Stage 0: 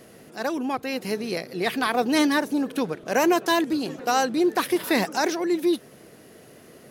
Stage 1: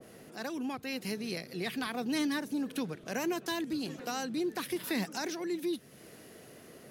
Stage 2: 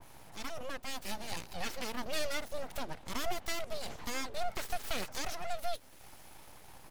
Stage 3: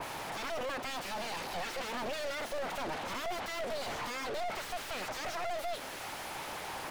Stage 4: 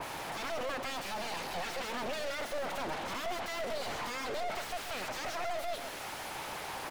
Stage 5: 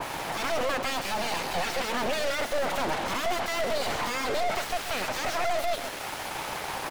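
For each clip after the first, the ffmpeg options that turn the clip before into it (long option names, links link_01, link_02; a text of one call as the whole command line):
ffmpeg -i in.wav -filter_complex "[0:a]acrossover=split=250[link_01][link_02];[link_02]acompressor=threshold=-43dB:ratio=2[link_03];[link_01][link_03]amix=inputs=2:normalize=0,adynamicequalizer=threshold=0.00355:dfrequency=1500:dqfactor=0.7:tfrequency=1500:tqfactor=0.7:attack=5:release=100:ratio=0.375:range=3.5:mode=boostabove:tftype=highshelf,volume=-4dB" out.wav
ffmpeg -i in.wav -af "aecho=1:1:2.3:0.5,aeval=exprs='abs(val(0))':channel_layout=same" out.wav
ffmpeg -i in.wav -filter_complex "[0:a]alimiter=level_in=6dB:limit=-24dB:level=0:latency=1,volume=-6dB,asplit=2[link_01][link_02];[link_02]highpass=frequency=720:poles=1,volume=38dB,asoftclip=type=tanh:threshold=-30dB[link_03];[link_01][link_03]amix=inputs=2:normalize=0,lowpass=frequency=2300:poles=1,volume=-6dB" out.wav
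ffmpeg -i in.wav -af "aecho=1:1:134:0.299" out.wav
ffmpeg -i in.wav -af "aeval=exprs='0.0422*(cos(1*acos(clip(val(0)/0.0422,-1,1)))-cos(1*PI/2))+0.00335*(cos(7*acos(clip(val(0)/0.0422,-1,1)))-cos(7*PI/2))':channel_layout=same,volume=8.5dB" out.wav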